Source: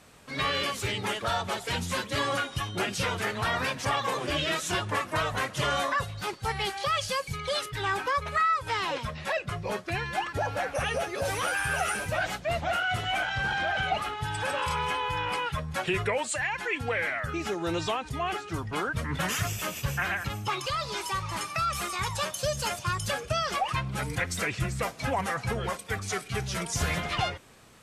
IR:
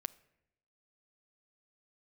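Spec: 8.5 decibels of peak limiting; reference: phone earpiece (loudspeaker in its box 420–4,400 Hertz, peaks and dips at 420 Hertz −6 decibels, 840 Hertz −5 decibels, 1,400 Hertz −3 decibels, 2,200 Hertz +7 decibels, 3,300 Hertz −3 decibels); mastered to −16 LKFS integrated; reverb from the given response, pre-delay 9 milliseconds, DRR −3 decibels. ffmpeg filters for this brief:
-filter_complex "[0:a]alimiter=limit=-23dB:level=0:latency=1,asplit=2[link_01][link_02];[1:a]atrim=start_sample=2205,adelay=9[link_03];[link_02][link_03]afir=irnorm=-1:irlink=0,volume=5dB[link_04];[link_01][link_04]amix=inputs=2:normalize=0,highpass=420,equalizer=frequency=420:width_type=q:width=4:gain=-6,equalizer=frequency=840:width_type=q:width=4:gain=-5,equalizer=frequency=1400:width_type=q:width=4:gain=-3,equalizer=frequency=2200:width_type=q:width=4:gain=7,equalizer=frequency=3300:width_type=q:width=4:gain=-3,lowpass=frequency=4400:width=0.5412,lowpass=frequency=4400:width=1.3066,volume=12.5dB"

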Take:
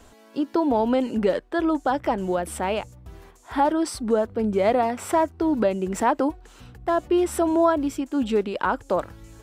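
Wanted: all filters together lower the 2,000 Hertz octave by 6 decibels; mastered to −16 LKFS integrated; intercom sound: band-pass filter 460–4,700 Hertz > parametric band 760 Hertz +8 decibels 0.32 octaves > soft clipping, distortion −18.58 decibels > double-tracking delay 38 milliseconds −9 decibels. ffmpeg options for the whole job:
ffmpeg -i in.wav -filter_complex "[0:a]highpass=460,lowpass=4700,equalizer=frequency=760:width_type=o:width=0.32:gain=8,equalizer=frequency=2000:width_type=o:gain=-8.5,asoftclip=threshold=-13dB,asplit=2[link_01][link_02];[link_02]adelay=38,volume=-9dB[link_03];[link_01][link_03]amix=inputs=2:normalize=0,volume=10dB" out.wav

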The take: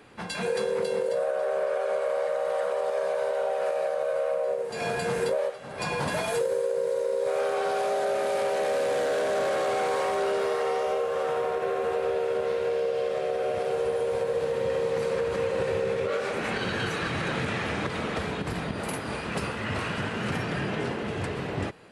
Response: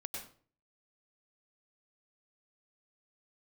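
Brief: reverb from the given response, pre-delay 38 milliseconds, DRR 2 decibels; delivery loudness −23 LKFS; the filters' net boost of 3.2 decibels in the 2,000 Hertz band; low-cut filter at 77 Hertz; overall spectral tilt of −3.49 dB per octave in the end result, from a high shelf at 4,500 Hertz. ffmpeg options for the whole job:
-filter_complex "[0:a]highpass=77,equalizer=frequency=2000:width_type=o:gain=5,highshelf=frequency=4500:gain=-5,asplit=2[link_01][link_02];[1:a]atrim=start_sample=2205,adelay=38[link_03];[link_02][link_03]afir=irnorm=-1:irlink=0,volume=-1dB[link_04];[link_01][link_04]amix=inputs=2:normalize=0,volume=2dB"

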